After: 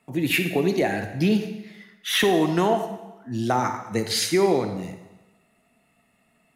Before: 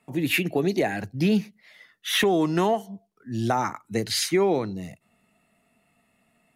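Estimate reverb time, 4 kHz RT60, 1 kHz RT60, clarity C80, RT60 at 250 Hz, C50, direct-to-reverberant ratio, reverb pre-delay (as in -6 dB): 1.1 s, 0.95 s, 1.1 s, 9.5 dB, 0.95 s, 8.0 dB, 7.0 dB, 36 ms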